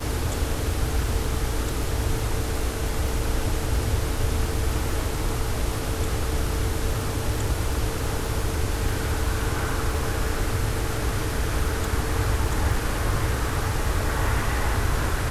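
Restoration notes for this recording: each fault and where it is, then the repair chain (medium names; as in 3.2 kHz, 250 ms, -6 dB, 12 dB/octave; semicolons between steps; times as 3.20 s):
crackle 26 per s -30 dBFS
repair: de-click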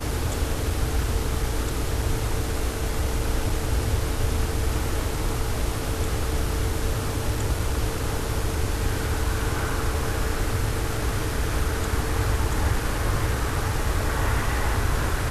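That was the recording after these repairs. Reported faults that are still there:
nothing left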